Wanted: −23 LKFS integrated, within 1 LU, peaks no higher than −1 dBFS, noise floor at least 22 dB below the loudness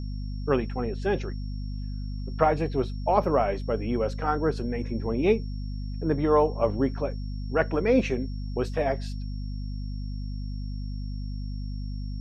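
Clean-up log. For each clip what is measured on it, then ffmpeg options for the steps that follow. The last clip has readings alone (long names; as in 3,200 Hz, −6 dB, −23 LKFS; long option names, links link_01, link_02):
mains hum 50 Hz; hum harmonics up to 250 Hz; level of the hum −30 dBFS; interfering tone 5,500 Hz; level of the tone −53 dBFS; integrated loudness −28.5 LKFS; sample peak −6.0 dBFS; target loudness −23.0 LKFS
→ -af "bandreject=frequency=50:width_type=h:width=4,bandreject=frequency=100:width_type=h:width=4,bandreject=frequency=150:width_type=h:width=4,bandreject=frequency=200:width_type=h:width=4,bandreject=frequency=250:width_type=h:width=4"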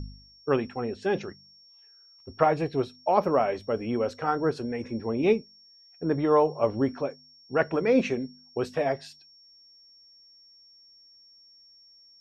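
mains hum none found; interfering tone 5,500 Hz; level of the tone −53 dBFS
→ -af "bandreject=frequency=5500:width=30"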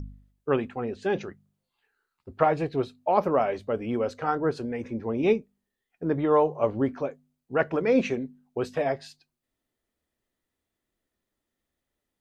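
interfering tone none found; integrated loudness −27.0 LKFS; sample peak −6.0 dBFS; target loudness −23.0 LKFS
→ -af "volume=4dB"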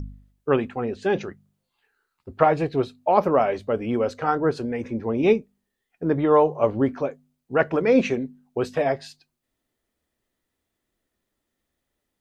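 integrated loudness −23.0 LKFS; sample peak −2.0 dBFS; background noise floor −81 dBFS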